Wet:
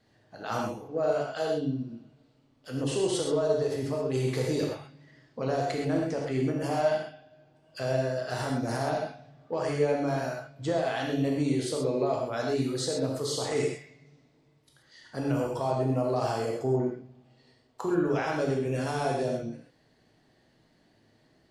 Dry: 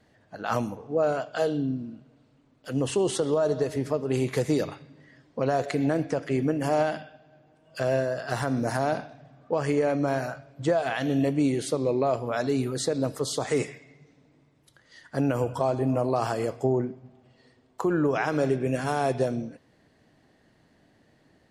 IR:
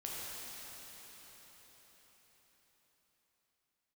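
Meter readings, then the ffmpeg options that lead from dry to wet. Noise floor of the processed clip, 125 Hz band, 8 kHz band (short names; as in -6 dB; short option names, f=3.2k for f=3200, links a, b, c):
-65 dBFS, -1.5 dB, -1.5 dB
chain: -filter_complex "[0:a]equalizer=f=4.5k:w=1.7:g=5.5,acontrast=74[a];[1:a]atrim=start_sample=2205,atrim=end_sample=6174[b];[a][b]afir=irnorm=-1:irlink=0,volume=-7.5dB"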